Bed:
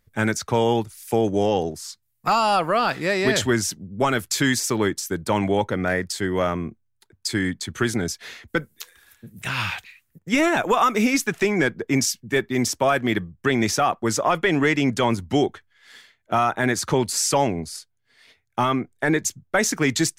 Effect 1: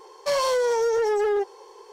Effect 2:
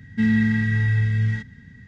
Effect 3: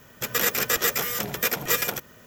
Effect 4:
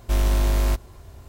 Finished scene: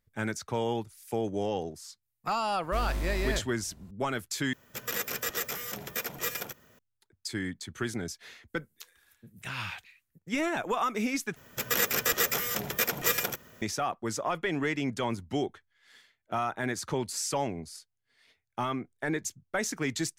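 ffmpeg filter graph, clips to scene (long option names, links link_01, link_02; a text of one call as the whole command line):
ffmpeg -i bed.wav -i cue0.wav -i cue1.wav -i cue2.wav -i cue3.wav -filter_complex "[3:a]asplit=2[link_01][link_02];[0:a]volume=-10.5dB,asplit=3[link_03][link_04][link_05];[link_03]atrim=end=4.534[link_06];[link_01]atrim=end=2.26,asetpts=PTS-STARTPTS,volume=-9.5dB[link_07];[link_04]atrim=start=6.786:end=11.364[link_08];[link_02]atrim=end=2.26,asetpts=PTS-STARTPTS,volume=-3.5dB[link_09];[link_05]atrim=start=13.616[link_10];[4:a]atrim=end=1.28,asetpts=PTS-STARTPTS,volume=-12dB,afade=type=in:duration=0.004:curve=hsin,afade=type=out:start_time=1.276:duration=0.004:curve=hsin,adelay=2630[link_11];[link_06][link_07]acrossfade=duration=0.004:curve1=hsin:curve2=hsin[link_12];[link_12][link_08]acrossfade=duration=0.004:curve1=hsin:curve2=hsin[link_13];[link_13][link_09]acrossfade=duration=0.004:curve1=hsin:curve2=hsin[link_14];[link_14][link_10]acrossfade=duration=0.004:curve1=hsin:curve2=hsin[link_15];[link_15][link_11]amix=inputs=2:normalize=0" out.wav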